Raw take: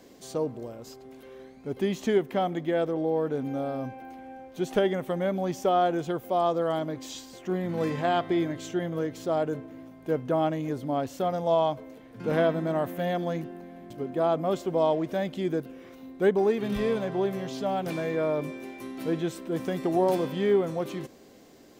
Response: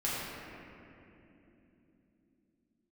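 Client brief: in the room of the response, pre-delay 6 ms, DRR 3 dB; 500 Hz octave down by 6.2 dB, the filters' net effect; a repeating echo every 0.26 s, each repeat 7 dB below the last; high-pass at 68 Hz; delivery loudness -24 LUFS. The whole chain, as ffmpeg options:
-filter_complex "[0:a]highpass=68,equalizer=f=500:t=o:g=-8.5,aecho=1:1:260|520|780|1040|1300:0.447|0.201|0.0905|0.0407|0.0183,asplit=2[a][b];[1:a]atrim=start_sample=2205,adelay=6[c];[b][c]afir=irnorm=-1:irlink=0,volume=-10.5dB[d];[a][d]amix=inputs=2:normalize=0,volume=5dB"

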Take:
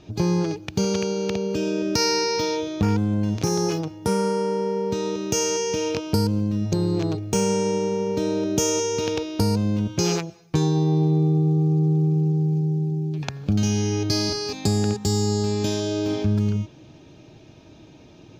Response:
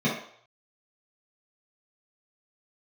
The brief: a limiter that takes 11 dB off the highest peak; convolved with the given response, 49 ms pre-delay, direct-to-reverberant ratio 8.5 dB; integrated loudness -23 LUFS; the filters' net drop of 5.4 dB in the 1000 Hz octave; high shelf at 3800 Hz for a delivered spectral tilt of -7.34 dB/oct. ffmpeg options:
-filter_complex "[0:a]equalizer=f=1k:t=o:g=-6,highshelf=f=3.8k:g=-3.5,alimiter=limit=-19.5dB:level=0:latency=1,asplit=2[a][b];[1:a]atrim=start_sample=2205,adelay=49[c];[b][c]afir=irnorm=-1:irlink=0,volume=-21.5dB[d];[a][d]amix=inputs=2:normalize=0,volume=1.5dB"

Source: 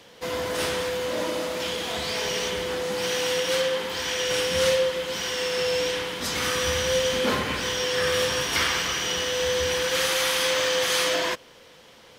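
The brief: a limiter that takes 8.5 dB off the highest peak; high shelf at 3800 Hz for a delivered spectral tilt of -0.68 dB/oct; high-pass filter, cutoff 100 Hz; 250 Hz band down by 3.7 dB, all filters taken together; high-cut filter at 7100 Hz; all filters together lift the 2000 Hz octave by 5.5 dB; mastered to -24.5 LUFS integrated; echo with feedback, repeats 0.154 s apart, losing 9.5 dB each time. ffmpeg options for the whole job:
-af "highpass=100,lowpass=7.1k,equalizer=f=250:t=o:g=-5,equalizer=f=2k:t=o:g=6,highshelf=f=3.8k:g=3,alimiter=limit=-16dB:level=0:latency=1,aecho=1:1:154|308|462|616:0.335|0.111|0.0365|0.012,volume=-0.5dB"

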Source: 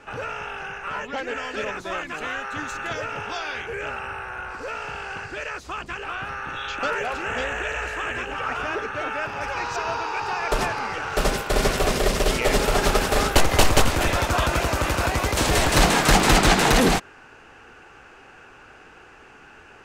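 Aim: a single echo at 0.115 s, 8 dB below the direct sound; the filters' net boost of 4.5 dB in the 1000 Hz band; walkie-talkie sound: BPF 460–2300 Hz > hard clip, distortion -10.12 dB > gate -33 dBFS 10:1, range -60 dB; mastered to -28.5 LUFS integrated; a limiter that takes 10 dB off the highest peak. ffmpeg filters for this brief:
-af "equalizer=f=1k:t=o:g=6.5,alimiter=limit=-13dB:level=0:latency=1,highpass=460,lowpass=2.3k,aecho=1:1:115:0.398,asoftclip=type=hard:threshold=-24dB,agate=range=-60dB:threshold=-33dB:ratio=10,volume=-1dB"

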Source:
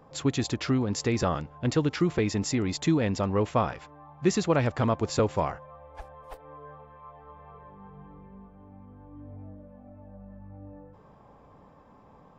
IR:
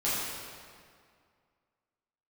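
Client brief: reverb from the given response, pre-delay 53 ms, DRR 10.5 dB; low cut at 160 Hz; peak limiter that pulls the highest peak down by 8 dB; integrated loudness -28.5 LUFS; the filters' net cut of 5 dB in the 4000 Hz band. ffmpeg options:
-filter_complex "[0:a]highpass=160,equalizer=f=4k:t=o:g=-6.5,alimiter=limit=-18dB:level=0:latency=1,asplit=2[a][b];[1:a]atrim=start_sample=2205,adelay=53[c];[b][c]afir=irnorm=-1:irlink=0,volume=-20.5dB[d];[a][d]amix=inputs=2:normalize=0,volume=2dB"

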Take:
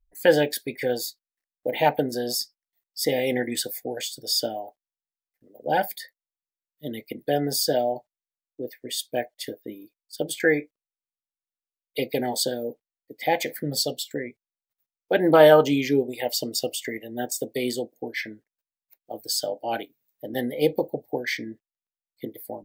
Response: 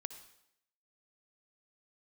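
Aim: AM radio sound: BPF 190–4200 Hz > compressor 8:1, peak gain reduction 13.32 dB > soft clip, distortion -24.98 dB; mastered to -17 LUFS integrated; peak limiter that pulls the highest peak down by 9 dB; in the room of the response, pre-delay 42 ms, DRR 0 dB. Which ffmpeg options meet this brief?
-filter_complex "[0:a]alimiter=limit=-11dB:level=0:latency=1,asplit=2[a][b];[1:a]atrim=start_sample=2205,adelay=42[c];[b][c]afir=irnorm=-1:irlink=0,volume=3dB[d];[a][d]amix=inputs=2:normalize=0,highpass=190,lowpass=4.2k,acompressor=threshold=-25dB:ratio=8,asoftclip=threshold=-17dB,volume=14.5dB"

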